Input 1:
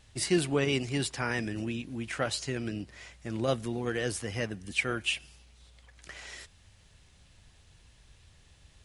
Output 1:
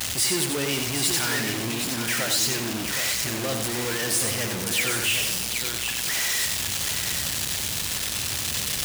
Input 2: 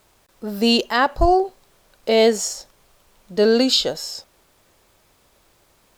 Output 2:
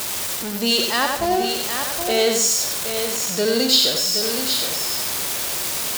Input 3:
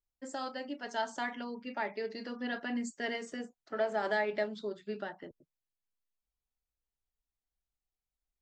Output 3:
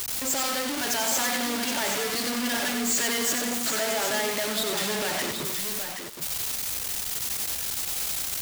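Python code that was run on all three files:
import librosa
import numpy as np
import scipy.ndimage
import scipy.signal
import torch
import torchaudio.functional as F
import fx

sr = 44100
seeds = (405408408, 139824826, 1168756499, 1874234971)

p1 = x + 0.5 * 10.0 ** (-19.5 / 20.0) * np.sign(x)
p2 = scipy.signal.sosfilt(scipy.signal.butter(2, 100.0, 'highpass', fs=sr, output='sos'), p1)
p3 = fx.high_shelf(p2, sr, hz=2300.0, db=10.0)
p4 = p3 + fx.echo_single(p3, sr, ms=771, db=-7.5, dry=0)
p5 = fx.echo_crushed(p4, sr, ms=92, feedback_pct=35, bits=5, wet_db=-4.0)
y = p5 * 10.0 ** (-8.0 / 20.0)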